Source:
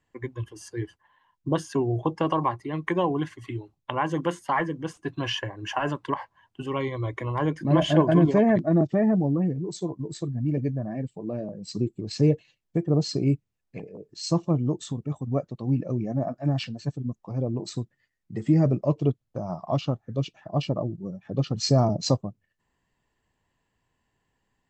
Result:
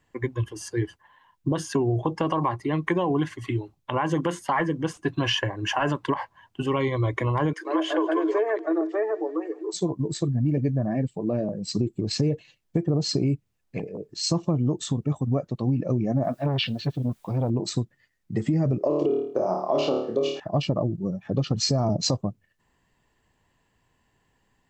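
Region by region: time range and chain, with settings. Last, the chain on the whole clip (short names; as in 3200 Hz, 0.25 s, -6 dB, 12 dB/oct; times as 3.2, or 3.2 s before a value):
7.53–9.74 rippled Chebyshev high-pass 310 Hz, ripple 9 dB + feedback echo 0.162 s, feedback 47%, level -21 dB + mismatched tape noise reduction encoder only
16.24–17.5 synth low-pass 3500 Hz, resonance Q 3.2 + requantised 12-bit, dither triangular + core saturation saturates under 520 Hz
18.78–20.4 resonant high-pass 380 Hz, resonance Q 3.4 + flutter echo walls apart 4.6 m, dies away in 0.45 s
whole clip: limiter -17.5 dBFS; compressor, threshold -26 dBFS; gain +6.5 dB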